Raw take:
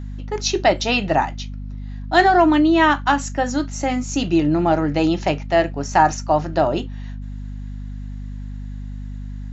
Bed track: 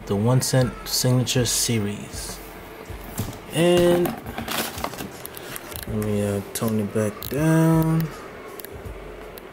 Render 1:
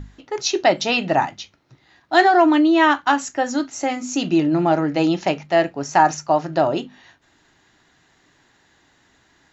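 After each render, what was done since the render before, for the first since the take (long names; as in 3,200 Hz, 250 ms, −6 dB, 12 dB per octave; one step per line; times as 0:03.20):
mains-hum notches 50/100/150/200/250 Hz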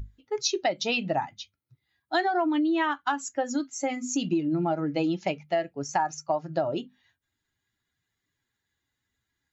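spectral dynamics exaggerated over time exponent 1.5
downward compressor 6 to 1, threshold −23 dBFS, peak gain reduction 12 dB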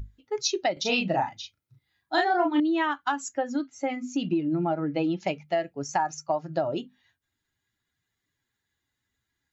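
0:00.73–0:02.60: double-tracking delay 37 ms −2.5 dB
0:03.38–0:05.20: low-pass filter 3,500 Hz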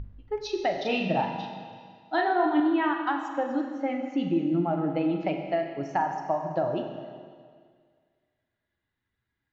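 high-frequency loss of the air 310 metres
four-comb reverb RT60 1.9 s, combs from 32 ms, DRR 4 dB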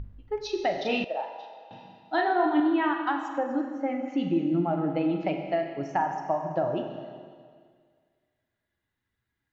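0:01.04–0:01.71: four-pole ladder high-pass 460 Hz, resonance 55%
0:03.38–0:04.08: parametric band 3,700 Hz −10 dB 0.88 octaves
0:05.91–0:06.90: parametric band 4,200 Hz −7.5 dB 0.24 octaves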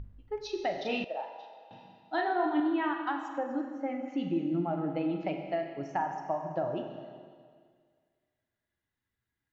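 level −5 dB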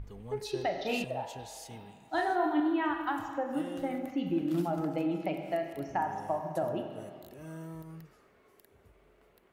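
mix in bed track −26 dB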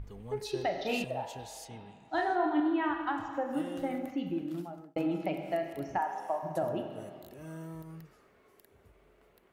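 0:01.65–0:03.34: high-frequency loss of the air 68 metres
0:04.02–0:04.96: fade out
0:05.98–0:06.43: high-pass filter 430 Hz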